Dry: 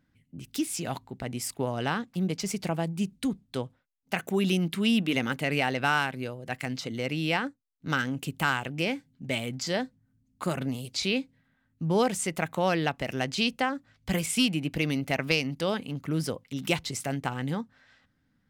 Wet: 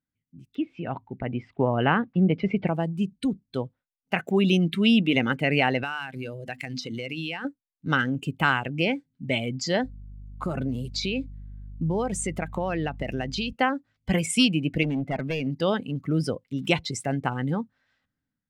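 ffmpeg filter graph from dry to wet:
-filter_complex "[0:a]asettb=1/sr,asplit=3[a][b][c];[a]atrim=end=0.554[d];[b]atrim=start=0.55:end=2.68,asetpts=PTS-STARTPTS,afade=t=in:d=0.004:c=qsin,afade=t=out:st=2.126:d=0.004:c=qsin,lowpass=f=3k:w=0.5412,lowpass=f=3k:w=1.3066,acontrast=31[e];[c]atrim=start=2.676[f];[d][e]acrossfade=d=0.004:c1=hsin:c2=qsin[g];[g][f]acrossfade=d=0.004:c1=qsin:c2=hsin,asettb=1/sr,asplit=3[h][i][j];[h]atrim=end=5.834[k];[i]atrim=start=5.83:end=7.45,asetpts=PTS-STARTPTS,afade=t=in:d=0.004:c=qsin,afade=t=out:st=1.616:d=0.004:c=qsin,highshelf=f=2.2k:g=10,bandreject=f=50:t=h:w=6,bandreject=f=100:t=h:w=6,bandreject=f=150:t=h:w=6,bandreject=f=200:t=h:w=6,bandreject=f=250:t=h:w=6,acompressor=threshold=-33dB:ratio=4:attack=3.2:release=140:knee=1:detection=peak[l];[j]atrim=start=7.446[m];[k][l]acrossfade=d=0.004:c1=hsin:c2=qsin[n];[n][m]acrossfade=d=0.004:c1=qsin:c2=hsin,asettb=1/sr,asplit=3[o][p][q];[o]atrim=end=9.844[r];[p]atrim=start=9.84:end=13.53,asetpts=PTS-STARTPTS,afade=t=in:d=0.004:c=qsin,afade=t=out:st=3.686:d=0.004:c=qsin,acompressor=threshold=-29dB:ratio=6:attack=3.2:release=140:knee=1:detection=peak,aeval=exprs='val(0)+0.00631*(sin(2*PI*50*n/s)+sin(2*PI*2*50*n/s)/2+sin(2*PI*3*50*n/s)/3+sin(2*PI*4*50*n/s)/4+sin(2*PI*5*50*n/s)/5)':c=same[s];[q]atrim=start=13.526[t];[r][s]acrossfade=d=0.004:c1=hsin:c2=qsin[u];[u][t]acrossfade=d=0.004:c1=qsin:c2=hsin,asettb=1/sr,asplit=3[v][w][x];[v]atrim=end=14.834[y];[w]atrim=start=14.83:end=15.47,asetpts=PTS-STARTPTS,afade=t=in:d=0.004:c=qsin,afade=t=out:st=0.636:d=0.004:c=qsin,aemphasis=mode=reproduction:type=75kf,asoftclip=type=hard:threshold=-28dB[z];[x]atrim=start=15.466[aa];[y][z]acrossfade=d=0.004:c1=hsin:c2=qsin[ab];[ab][aa]acrossfade=d=0.004:c1=qsin:c2=hsin,afftdn=nr=15:nf=-37,highshelf=f=10k:g=-4.5,dynaudnorm=f=910:g=3:m=11.5dB,volume=-5dB"

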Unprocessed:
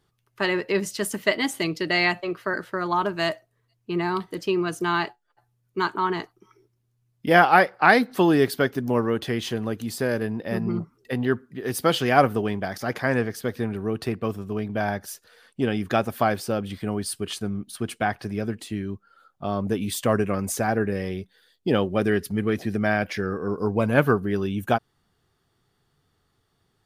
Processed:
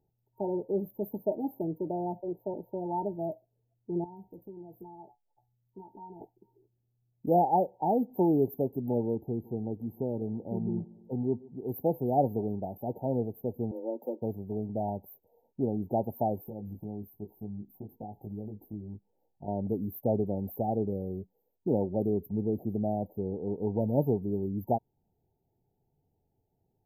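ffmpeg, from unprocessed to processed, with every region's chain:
-filter_complex "[0:a]asettb=1/sr,asplit=3[a][b][c];[a]atrim=end=4.044[d];[b]atrim=start=4.04:end=6.21,asetpts=PTS-STARTPTS,afade=t=in:d=0.004:c=qsin,afade=t=out:st=2.166:d=0.004:c=qsin,equalizer=f=400:w=0.72:g=-6.5,acompressor=threshold=-40dB:ratio=2.5:attack=3.2:release=140:knee=1:detection=peak,asplit=2[e][f];[f]adelay=15,volume=-8dB[g];[e][g]amix=inputs=2:normalize=0,atrim=end_sample=95697[h];[c]atrim=start=6.206[i];[d][h]acrossfade=d=0.004:c1=hsin:c2=qsin[j];[j][i]acrossfade=d=0.004:c1=qsin:c2=hsin,asettb=1/sr,asplit=3[k][l][m];[k]atrim=end=9.154[n];[l]atrim=start=9.15:end=11.69,asetpts=PTS-STARTPTS,afade=t=in:d=0.004:c=qsin,afade=t=out:st=2.536:d=0.004:c=qsin,lowpass=9.3k,equalizer=f=570:w=3.4:g=-6.5,aecho=1:1:148|296|444|592:0.075|0.0442|0.0261|0.0154,atrim=end_sample=112014[o];[m]atrim=start=11.686[p];[n][o]acrossfade=d=0.004:c1=hsin:c2=qsin[q];[q][p]acrossfade=d=0.004:c1=qsin:c2=hsin,asettb=1/sr,asplit=3[r][s][t];[r]atrim=end=13.714[u];[s]atrim=start=13.71:end=14.22,asetpts=PTS-STARTPTS,afade=t=in:d=0.004:c=qsin,afade=t=out:st=0.506:d=0.004:c=qsin,bass=f=250:g=-8,treble=f=4k:g=0,afreqshift=120,asplit=2[v][w];[w]adelay=12,volume=-7.5dB[x];[v][x]amix=inputs=2:normalize=0,atrim=end_sample=22491[y];[t]atrim=start=14.216[z];[u][y]acrossfade=d=0.004:c1=hsin:c2=qsin[aa];[aa][z]acrossfade=d=0.004:c1=qsin:c2=hsin,asettb=1/sr,asplit=3[ab][ac][ad];[ab]atrim=end=16.434[ae];[ac]atrim=start=16.43:end=19.48,asetpts=PTS-STARTPTS,afade=t=in:d=0.004:c=qsin,afade=t=out:st=3.046:d=0.004:c=qsin,equalizer=f=620:w=2.9:g=-6,acompressor=threshold=-32dB:ratio=6:attack=3.2:release=140:knee=1:detection=peak,asplit=2[af][ag];[ag]adelay=19,volume=-3.5dB[ah];[af][ah]amix=inputs=2:normalize=0,atrim=end_sample=134505[ai];[ad]atrim=start=19.476[aj];[ae][ai]acrossfade=d=0.004:c1=hsin:c2=qsin[ak];[ak][aj]acrossfade=d=0.004:c1=qsin:c2=hsin,afftfilt=real='re*(1-between(b*sr/4096,930,12000))':imag='im*(1-between(b*sr/4096,930,12000))':win_size=4096:overlap=0.75,adynamicequalizer=threshold=0.0178:dfrequency=1000:dqfactor=0.72:tfrequency=1000:tqfactor=0.72:attack=5:release=100:ratio=0.375:range=2.5:mode=cutabove:tftype=bell,volume=-5.5dB"

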